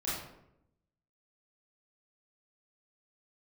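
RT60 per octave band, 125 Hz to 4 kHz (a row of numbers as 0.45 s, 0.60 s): 1.1 s, 1.0 s, 0.90 s, 0.75 s, 0.60 s, 0.45 s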